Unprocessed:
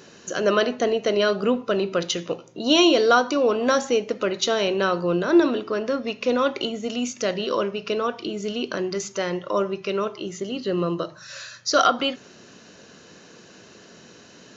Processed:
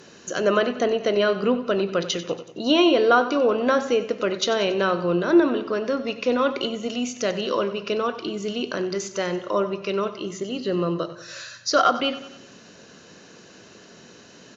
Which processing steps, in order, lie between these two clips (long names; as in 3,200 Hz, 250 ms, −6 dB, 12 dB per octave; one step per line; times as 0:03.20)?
treble cut that deepens with the level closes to 2,800 Hz, closed at −15 dBFS
repeating echo 93 ms, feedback 52%, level −14.5 dB